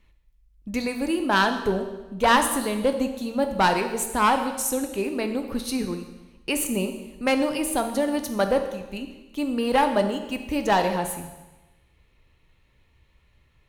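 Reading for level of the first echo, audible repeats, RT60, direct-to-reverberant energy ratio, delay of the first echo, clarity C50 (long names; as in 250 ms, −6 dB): no echo audible, no echo audible, 1.1 s, 6.0 dB, no echo audible, 8.0 dB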